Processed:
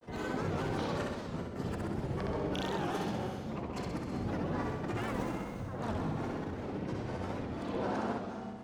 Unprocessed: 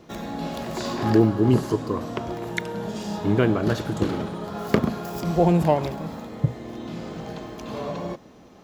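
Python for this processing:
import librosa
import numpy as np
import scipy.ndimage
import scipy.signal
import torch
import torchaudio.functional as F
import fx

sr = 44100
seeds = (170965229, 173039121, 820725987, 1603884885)

p1 = fx.lowpass(x, sr, hz=2700.0, slope=6)
p2 = fx.over_compress(p1, sr, threshold_db=-30.0, ratio=-1.0)
p3 = fx.granulator(p2, sr, seeds[0], grain_ms=100.0, per_s=20.0, spray_ms=38.0, spread_st=12)
p4 = p3 + fx.echo_feedback(p3, sr, ms=64, feedback_pct=60, wet_db=-3.0, dry=0)
p5 = fx.rev_gated(p4, sr, seeds[1], gate_ms=420, shape='rising', drr_db=7.5)
p6 = fx.record_warp(p5, sr, rpm=78.0, depth_cents=160.0)
y = F.gain(torch.from_numpy(p6), -9.0).numpy()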